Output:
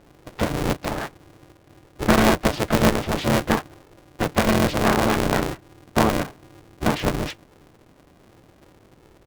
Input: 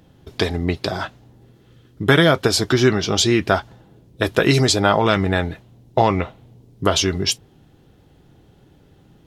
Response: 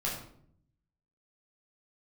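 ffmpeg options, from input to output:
-filter_complex "[0:a]lowpass=1.9k,bandreject=f=1.1k:w=5.9,aeval=exprs='clip(val(0),-1,0.0562)':c=same,asplit=4[a][b][c][d];[b]asetrate=29433,aresample=44100,atempo=1.49831,volume=-2dB[e];[c]asetrate=35002,aresample=44100,atempo=1.25992,volume=-8dB[f];[d]asetrate=55563,aresample=44100,atempo=0.793701,volume=-13dB[g];[a][e][f][g]amix=inputs=4:normalize=0,aeval=exprs='val(0)*sgn(sin(2*PI*220*n/s))':c=same,volume=-3.5dB"

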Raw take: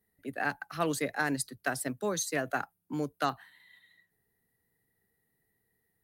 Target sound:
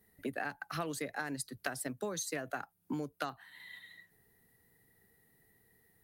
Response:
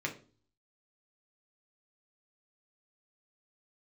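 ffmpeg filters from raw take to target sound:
-af "acompressor=threshold=-43dB:ratio=12,volume=8.5dB"

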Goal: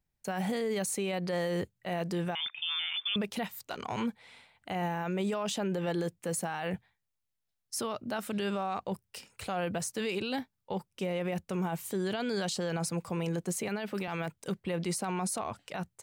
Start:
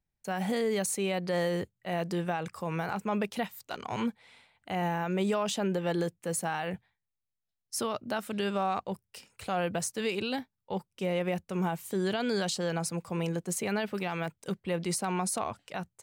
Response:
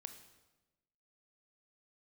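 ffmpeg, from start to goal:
-filter_complex "[0:a]asettb=1/sr,asplit=3[a][b][c];[a]atrim=end=13.684[d];[b]atrim=start=13.68:end=14.08,asetpts=PTS-STARTPTS,afade=t=in:d=0.004:c=qsin,afade=t=out:st=0.396:d=0.004:c=qsin,highpass=f=130:w=0.5412,highpass=f=130:w=1.3066[e];[c]atrim=start=14.076[f];[d][e]acrossfade=d=0.004:c1=hsin:c2=qsin[g];[g][f]acrossfade=d=0.004:c1=qsin:c2=hsin,alimiter=level_in=3.5dB:limit=-24dB:level=0:latency=1:release=44,volume=-3.5dB,asettb=1/sr,asplit=3[h][i][j];[h]atrim=end=2.354[k];[i]atrim=start=2.35:end=3.16,asetpts=PTS-STARTPTS,afade=t=in:d=0.004:c=qsin,afade=t=out:st=0.806:d=0.004:c=qsin,lowpass=f=3.1k:t=q:w=0.5098,lowpass=f=3.1k:t=q:w=0.6013,lowpass=f=3.1k:t=q:w=0.9,lowpass=f=3.1k:t=q:w=2.563,afreqshift=-3700[l];[j]atrim=start=3.156[m];[k][l]acrossfade=d=0.004:c1=hsin:c2=qsin[n];[n][m]acrossfade=d=0.004:c1=qsin:c2=hsin,volume=2.5dB"

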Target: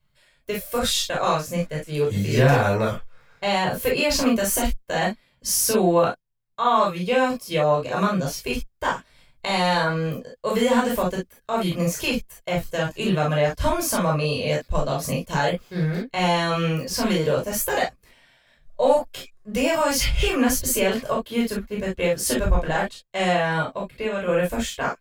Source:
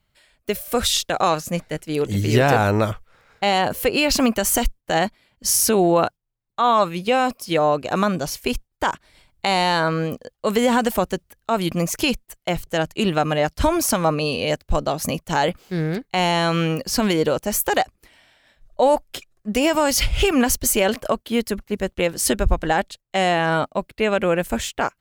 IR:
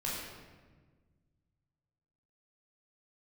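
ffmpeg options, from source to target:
-filter_complex "[0:a]asettb=1/sr,asplit=3[a][b][c];[a]atrim=end=23.584[d];[b]atrim=start=23.58:end=24.29,asetpts=PTS-STARTPTS,afade=t=in:d=0.004:c=qsin,afade=t=out:st=0.706:d=0.004:c=qsin,acompressor=threshold=-22dB:ratio=3[e];[c]atrim=start=24.286[f];[d][e]acrossfade=d=0.004:c1=hsin:c2=qsin[g];[g][f]acrossfade=d=0.004:c1=qsin:c2=hsin[h];[1:a]atrim=start_sample=2205,atrim=end_sample=3087[i];[h][i]afir=irnorm=-1:irlink=0,volume=-3.5dB"

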